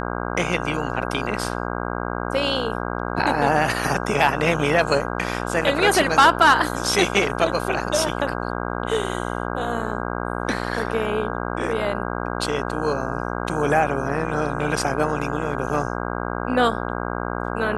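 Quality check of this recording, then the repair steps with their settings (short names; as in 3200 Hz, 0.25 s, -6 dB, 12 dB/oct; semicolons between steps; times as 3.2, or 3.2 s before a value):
buzz 60 Hz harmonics 27 -27 dBFS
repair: de-hum 60 Hz, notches 27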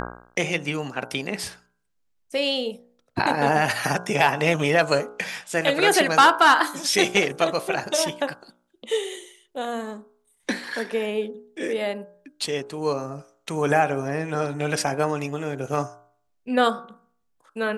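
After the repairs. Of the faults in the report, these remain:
none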